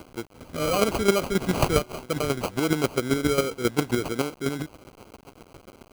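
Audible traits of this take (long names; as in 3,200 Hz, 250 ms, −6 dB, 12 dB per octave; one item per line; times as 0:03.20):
a quantiser's noise floor 8 bits, dither none
chopped level 7.4 Hz, depth 60%, duty 20%
aliases and images of a low sample rate 1,800 Hz, jitter 0%
Opus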